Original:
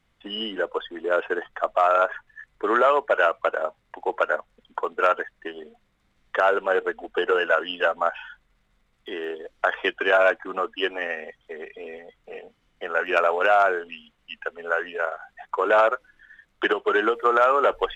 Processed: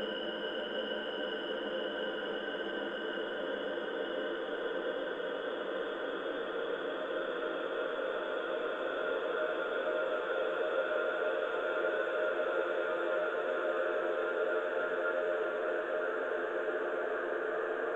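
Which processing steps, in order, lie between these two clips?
slices reordered back to front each 84 ms, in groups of 3
extreme stretch with random phases 20×, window 1.00 s, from 0:00.51
level −7.5 dB

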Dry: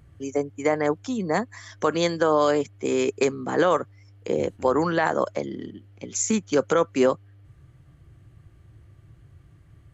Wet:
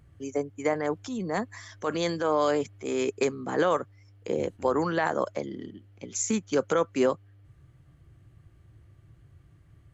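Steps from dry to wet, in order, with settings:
0:00.73–0:03.02: transient designer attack −6 dB, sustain +3 dB
level −4 dB

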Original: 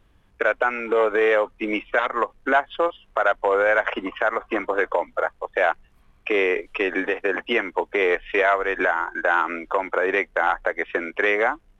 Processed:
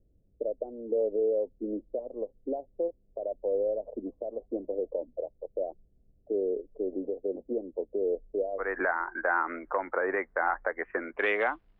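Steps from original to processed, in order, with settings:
Butterworth low-pass 600 Hz 48 dB per octave, from 0:08.58 2,000 Hz, from 0:11.18 4,900 Hz
level −7 dB

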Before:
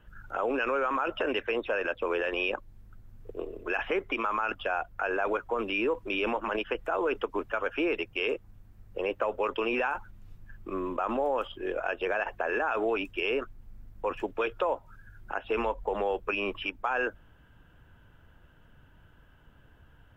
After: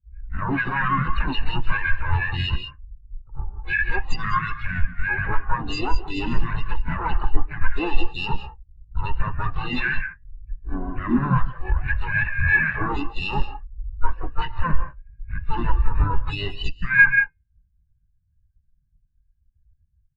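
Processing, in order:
lower of the sound and its delayed copy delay 0.64 ms
parametric band 94 Hz −6.5 dB 0.24 octaves
comb filter 1.1 ms, depth 59%
reverb whose tail is shaped and stops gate 220 ms rising, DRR 4.5 dB
dynamic equaliser 410 Hz, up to −4 dB, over −47 dBFS, Q 0.83
pitch-shifted copies added +5 semitones −6 dB, +7 semitones −6 dB
hum removal 112.7 Hz, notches 28
boost into a limiter +19.5 dB
every bin expanded away from the loudest bin 2.5 to 1
level −1 dB

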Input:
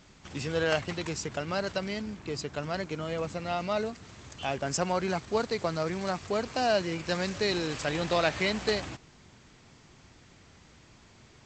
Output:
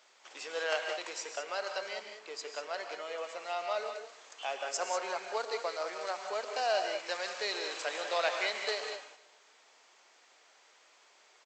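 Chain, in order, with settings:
high-pass filter 500 Hz 24 dB per octave
repeating echo 149 ms, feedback 50%, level −21.5 dB
reverb whose tail is shaped and stops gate 220 ms rising, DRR 5 dB
level −4 dB

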